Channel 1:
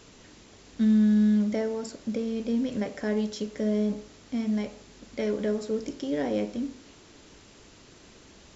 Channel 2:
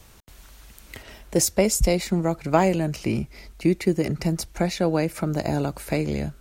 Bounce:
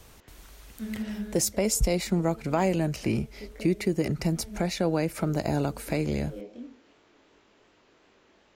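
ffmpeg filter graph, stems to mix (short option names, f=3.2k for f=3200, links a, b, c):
-filter_complex "[0:a]bass=f=250:g=-12,treble=f=4k:g=-15,acrossover=split=470|3000[a][b][c];[b]acompressor=threshold=-44dB:ratio=6[d];[a][d][c]amix=inputs=3:normalize=0,flanger=delay=20:depth=6.5:speed=2.7,volume=-2dB[e];[1:a]alimiter=limit=-12.5dB:level=0:latency=1:release=116,volume=-2dB,asplit=2[f][g];[g]apad=whole_len=377084[h];[e][h]sidechaincompress=threshold=-31dB:ratio=8:attack=16:release=390[i];[i][f]amix=inputs=2:normalize=0"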